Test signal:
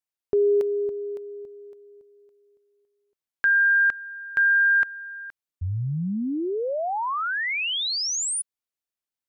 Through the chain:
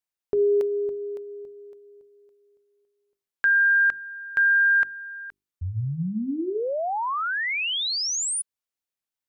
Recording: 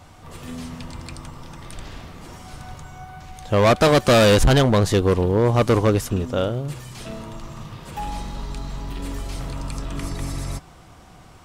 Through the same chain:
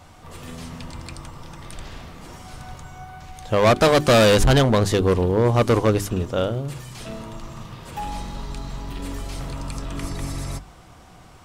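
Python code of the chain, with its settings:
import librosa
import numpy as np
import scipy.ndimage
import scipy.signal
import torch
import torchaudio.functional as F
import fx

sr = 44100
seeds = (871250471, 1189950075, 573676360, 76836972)

y = fx.hum_notches(x, sr, base_hz=50, count=8)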